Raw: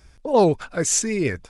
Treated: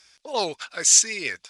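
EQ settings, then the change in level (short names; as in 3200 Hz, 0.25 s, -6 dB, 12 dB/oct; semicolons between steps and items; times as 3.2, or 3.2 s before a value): band-pass 4600 Hz, Q 1; +8.5 dB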